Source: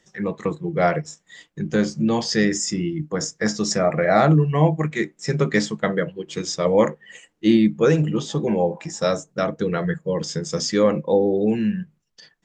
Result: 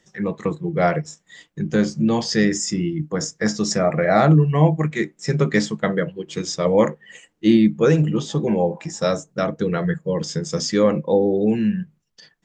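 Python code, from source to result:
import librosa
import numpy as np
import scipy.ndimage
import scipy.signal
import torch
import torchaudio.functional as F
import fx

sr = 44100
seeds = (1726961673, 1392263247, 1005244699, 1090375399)

y = fx.peak_eq(x, sr, hz=140.0, db=2.5, octaves=2.0)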